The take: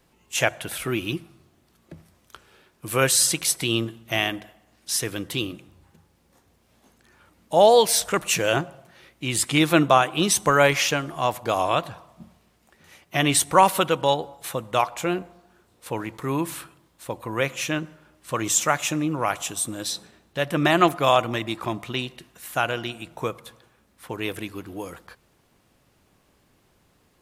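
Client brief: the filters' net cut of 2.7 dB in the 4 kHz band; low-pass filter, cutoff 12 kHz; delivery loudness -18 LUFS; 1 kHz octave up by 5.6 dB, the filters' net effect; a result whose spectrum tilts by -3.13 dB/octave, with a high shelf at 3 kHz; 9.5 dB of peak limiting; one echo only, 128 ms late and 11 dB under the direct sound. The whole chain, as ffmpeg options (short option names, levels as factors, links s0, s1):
-af "lowpass=12000,equalizer=f=1000:t=o:g=7,highshelf=f=3000:g=4,equalizer=f=4000:t=o:g=-7.5,alimiter=limit=0.422:level=0:latency=1,aecho=1:1:128:0.282,volume=1.68"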